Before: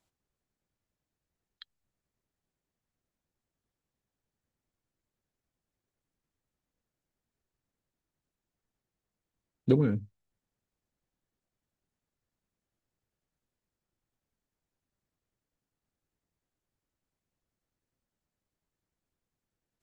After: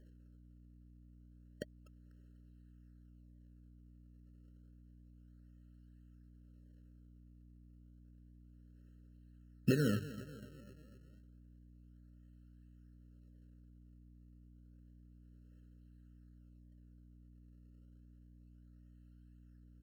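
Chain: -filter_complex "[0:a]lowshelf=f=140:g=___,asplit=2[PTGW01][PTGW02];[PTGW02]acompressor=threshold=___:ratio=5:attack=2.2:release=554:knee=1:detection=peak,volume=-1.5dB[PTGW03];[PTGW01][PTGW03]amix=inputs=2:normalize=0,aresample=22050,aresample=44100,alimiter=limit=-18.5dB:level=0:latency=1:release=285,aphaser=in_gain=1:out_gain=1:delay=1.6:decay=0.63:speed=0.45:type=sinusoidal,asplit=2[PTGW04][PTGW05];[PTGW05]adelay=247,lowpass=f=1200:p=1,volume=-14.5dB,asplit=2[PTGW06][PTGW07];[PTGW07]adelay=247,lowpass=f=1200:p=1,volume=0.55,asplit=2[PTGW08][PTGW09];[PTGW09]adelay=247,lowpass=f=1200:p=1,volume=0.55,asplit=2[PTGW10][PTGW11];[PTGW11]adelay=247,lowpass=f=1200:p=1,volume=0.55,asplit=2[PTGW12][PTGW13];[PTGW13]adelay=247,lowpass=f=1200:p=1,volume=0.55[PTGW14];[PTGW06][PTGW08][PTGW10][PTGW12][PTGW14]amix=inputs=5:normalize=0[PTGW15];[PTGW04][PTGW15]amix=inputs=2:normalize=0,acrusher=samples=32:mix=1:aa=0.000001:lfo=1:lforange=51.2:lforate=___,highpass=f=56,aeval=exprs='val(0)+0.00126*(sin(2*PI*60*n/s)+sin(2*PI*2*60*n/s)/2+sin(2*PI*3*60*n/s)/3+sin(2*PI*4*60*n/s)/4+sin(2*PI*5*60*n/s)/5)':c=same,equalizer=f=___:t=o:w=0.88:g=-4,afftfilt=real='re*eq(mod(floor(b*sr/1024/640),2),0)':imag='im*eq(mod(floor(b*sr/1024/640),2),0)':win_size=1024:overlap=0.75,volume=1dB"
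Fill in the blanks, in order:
-7.5, -33dB, 0.3, 90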